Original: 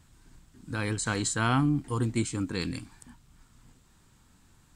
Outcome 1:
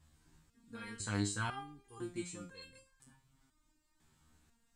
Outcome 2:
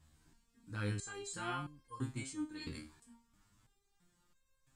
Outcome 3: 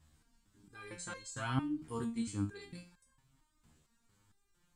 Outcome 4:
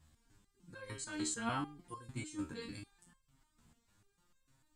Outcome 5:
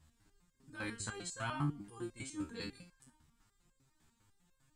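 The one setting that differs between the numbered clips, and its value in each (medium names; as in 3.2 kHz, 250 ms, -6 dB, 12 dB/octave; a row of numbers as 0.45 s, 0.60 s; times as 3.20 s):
resonator arpeggio, rate: 2 Hz, 3 Hz, 4.4 Hz, 6.7 Hz, 10 Hz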